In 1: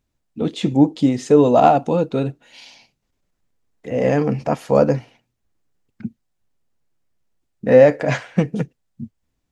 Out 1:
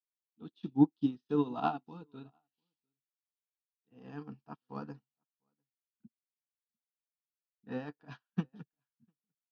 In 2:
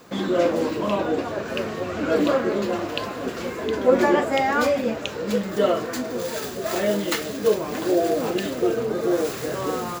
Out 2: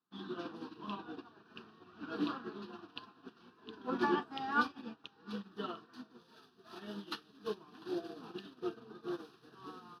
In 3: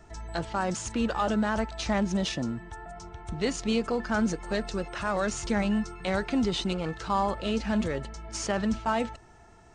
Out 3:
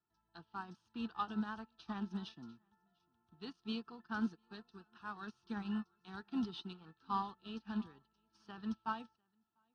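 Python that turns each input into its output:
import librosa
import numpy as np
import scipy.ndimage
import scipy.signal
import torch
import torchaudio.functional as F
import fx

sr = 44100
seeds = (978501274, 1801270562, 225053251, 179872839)

y = fx.bandpass_edges(x, sr, low_hz=160.0, high_hz=7100.0)
y = fx.fixed_phaser(y, sr, hz=2100.0, stages=6)
y = y + 10.0 ** (-17.0 / 20.0) * np.pad(y, (int(698 * sr / 1000.0), 0))[:len(y)]
y = fx.upward_expand(y, sr, threshold_db=-43.0, expansion=2.5)
y = F.gain(torch.from_numpy(y), -5.0).numpy()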